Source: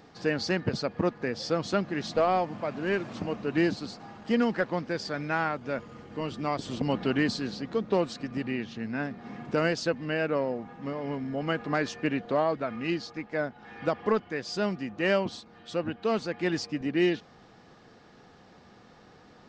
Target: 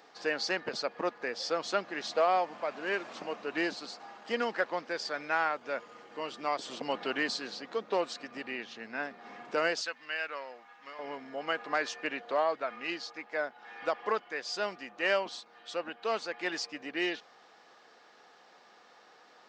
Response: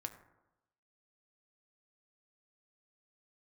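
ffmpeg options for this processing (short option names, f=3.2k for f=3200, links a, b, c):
-af "asetnsamples=n=441:p=0,asendcmd='9.81 highpass f 1300;10.99 highpass f 610',highpass=540"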